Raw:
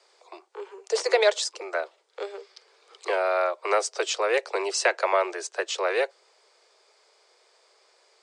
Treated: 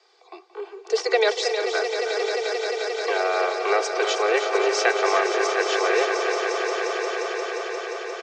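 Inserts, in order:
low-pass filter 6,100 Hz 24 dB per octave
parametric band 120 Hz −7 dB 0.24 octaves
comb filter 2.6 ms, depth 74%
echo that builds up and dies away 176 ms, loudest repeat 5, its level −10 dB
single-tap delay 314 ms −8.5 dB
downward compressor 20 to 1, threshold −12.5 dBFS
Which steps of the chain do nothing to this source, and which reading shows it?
parametric band 120 Hz: nothing at its input below 290 Hz

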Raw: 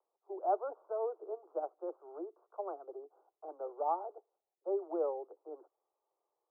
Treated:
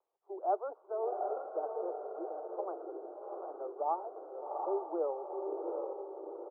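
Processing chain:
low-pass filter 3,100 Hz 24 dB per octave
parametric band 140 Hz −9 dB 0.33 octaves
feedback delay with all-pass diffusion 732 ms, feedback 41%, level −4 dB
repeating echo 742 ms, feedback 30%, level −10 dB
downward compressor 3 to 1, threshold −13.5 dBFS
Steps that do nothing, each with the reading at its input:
low-pass filter 3,100 Hz: nothing at its input above 1,400 Hz
parametric band 140 Hz: nothing at its input below 270 Hz
downward compressor, threshold −13.5 dBFS: peak of its input −21.5 dBFS

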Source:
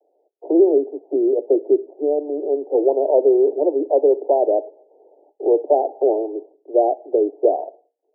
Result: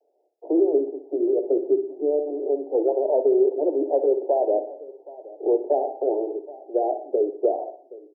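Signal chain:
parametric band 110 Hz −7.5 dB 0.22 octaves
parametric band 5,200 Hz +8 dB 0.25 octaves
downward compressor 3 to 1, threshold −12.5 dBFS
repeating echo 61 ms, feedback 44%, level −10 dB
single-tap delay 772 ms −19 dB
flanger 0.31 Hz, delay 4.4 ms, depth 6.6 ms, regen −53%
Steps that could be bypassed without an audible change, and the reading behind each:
parametric band 110 Hz: nothing at its input below 250 Hz
parametric band 5,200 Hz: nothing at its input above 910 Hz

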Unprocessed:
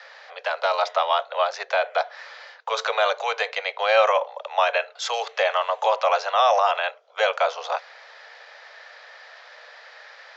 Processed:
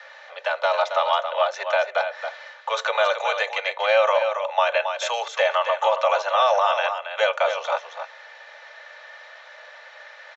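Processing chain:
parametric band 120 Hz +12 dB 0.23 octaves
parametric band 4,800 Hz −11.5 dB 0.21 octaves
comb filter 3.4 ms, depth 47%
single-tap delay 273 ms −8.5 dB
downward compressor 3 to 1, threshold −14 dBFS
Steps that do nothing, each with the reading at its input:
parametric band 120 Hz: nothing at its input below 400 Hz

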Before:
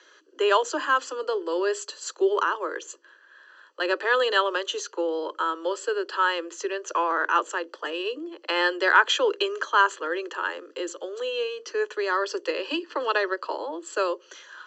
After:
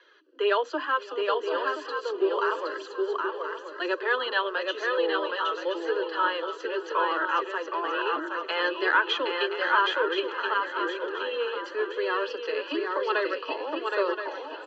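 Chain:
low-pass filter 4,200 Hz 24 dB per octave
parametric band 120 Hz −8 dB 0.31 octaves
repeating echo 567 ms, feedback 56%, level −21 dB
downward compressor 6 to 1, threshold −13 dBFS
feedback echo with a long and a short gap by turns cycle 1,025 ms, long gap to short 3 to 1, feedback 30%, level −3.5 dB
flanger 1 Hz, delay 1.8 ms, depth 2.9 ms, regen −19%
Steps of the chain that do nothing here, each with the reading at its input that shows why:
parametric band 120 Hz: nothing at its input below 250 Hz

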